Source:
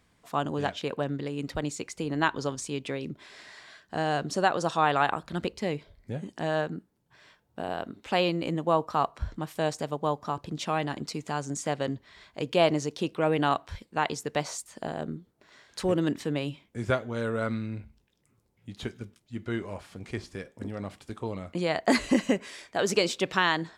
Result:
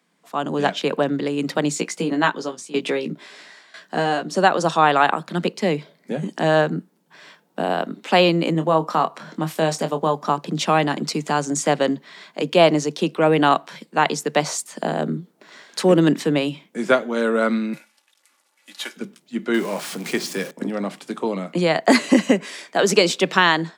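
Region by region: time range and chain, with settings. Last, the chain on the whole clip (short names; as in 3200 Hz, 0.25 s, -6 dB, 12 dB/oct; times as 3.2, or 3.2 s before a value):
1.74–4.35 tremolo saw down 1 Hz, depth 85% + doubler 17 ms -5 dB
8.52–10.15 compressor 1.5:1, threshold -31 dBFS + doubler 25 ms -9 dB
17.73–18.96 CVSD 64 kbps + HPF 930 Hz + comb 3.5 ms, depth 62%
19.54–20.51 zero-crossing step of -46 dBFS + high shelf 3300 Hz +7 dB
whole clip: steep high-pass 150 Hz 96 dB/oct; AGC gain up to 11.5 dB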